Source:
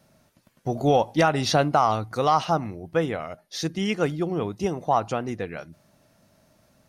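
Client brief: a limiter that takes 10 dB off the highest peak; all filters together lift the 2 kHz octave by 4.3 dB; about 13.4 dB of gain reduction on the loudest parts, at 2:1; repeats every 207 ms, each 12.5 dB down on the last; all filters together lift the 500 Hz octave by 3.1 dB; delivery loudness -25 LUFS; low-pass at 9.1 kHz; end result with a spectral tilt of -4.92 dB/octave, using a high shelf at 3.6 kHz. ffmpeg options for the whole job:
-af "lowpass=9100,equalizer=f=500:t=o:g=3.5,equalizer=f=2000:t=o:g=4.5,highshelf=f=3600:g=4,acompressor=threshold=0.0126:ratio=2,alimiter=level_in=1.58:limit=0.0631:level=0:latency=1,volume=0.631,aecho=1:1:207|414|621:0.237|0.0569|0.0137,volume=4.73"

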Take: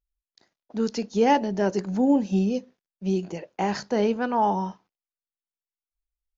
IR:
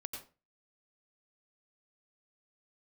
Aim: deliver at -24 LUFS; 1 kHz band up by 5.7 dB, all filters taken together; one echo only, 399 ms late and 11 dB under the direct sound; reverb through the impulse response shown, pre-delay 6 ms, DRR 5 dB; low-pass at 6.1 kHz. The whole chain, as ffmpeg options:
-filter_complex "[0:a]lowpass=6100,equalizer=f=1000:t=o:g=7,aecho=1:1:399:0.282,asplit=2[s0][s1];[1:a]atrim=start_sample=2205,adelay=6[s2];[s1][s2]afir=irnorm=-1:irlink=0,volume=0.708[s3];[s0][s3]amix=inputs=2:normalize=0,volume=0.75"

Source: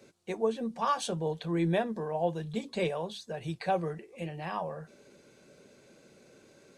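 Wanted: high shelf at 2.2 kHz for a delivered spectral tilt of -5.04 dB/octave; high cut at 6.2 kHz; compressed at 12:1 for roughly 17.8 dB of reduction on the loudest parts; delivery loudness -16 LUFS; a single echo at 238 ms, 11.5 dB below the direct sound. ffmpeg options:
-af "lowpass=6200,highshelf=f=2200:g=7,acompressor=threshold=0.00891:ratio=12,aecho=1:1:238:0.266,volume=29.9"

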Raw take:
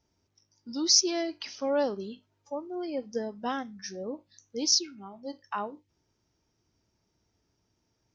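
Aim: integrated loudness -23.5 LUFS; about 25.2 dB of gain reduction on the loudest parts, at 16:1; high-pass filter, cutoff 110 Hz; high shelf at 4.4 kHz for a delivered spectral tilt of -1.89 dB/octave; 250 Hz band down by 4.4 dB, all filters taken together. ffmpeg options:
-af "highpass=110,equalizer=f=250:t=o:g=-6,highshelf=f=4400:g=8.5,acompressor=threshold=0.0141:ratio=16,volume=8.91"

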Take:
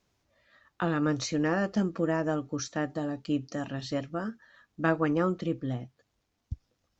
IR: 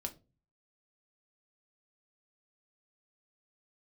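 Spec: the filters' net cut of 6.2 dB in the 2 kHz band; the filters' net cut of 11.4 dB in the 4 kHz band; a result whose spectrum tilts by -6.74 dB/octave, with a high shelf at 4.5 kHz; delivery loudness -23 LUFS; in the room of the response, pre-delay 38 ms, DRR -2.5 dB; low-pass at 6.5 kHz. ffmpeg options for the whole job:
-filter_complex "[0:a]lowpass=6500,equalizer=f=2000:t=o:g=-5.5,equalizer=f=4000:t=o:g=-7.5,highshelf=f=4500:g=-8.5,asplit=2[s0][s1];[1:a]atrim=start_sample=2205,adelay=38[s2];[s1][s2]afir=irnorm=-1:irlink=0,volume=1.58[s3];[s0][s3]amix=inputs=2:normalize=0,volume=1.33"

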